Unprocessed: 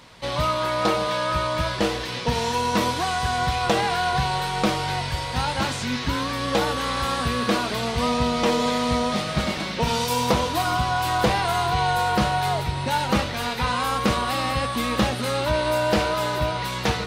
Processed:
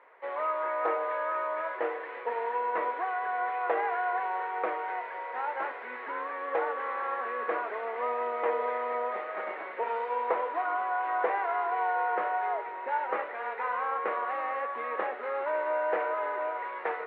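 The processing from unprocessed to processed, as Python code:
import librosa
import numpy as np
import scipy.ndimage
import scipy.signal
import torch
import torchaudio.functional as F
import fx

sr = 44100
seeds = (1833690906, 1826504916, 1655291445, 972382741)

y = scipy.signal.sosfilt(scipy.signal.ellip(3, 1.0, 50, [410.0, 2000.0], 'bandpass', fs=sr, output='sos'), x)
y = y * librosa.db_to_amplitude(-5.5)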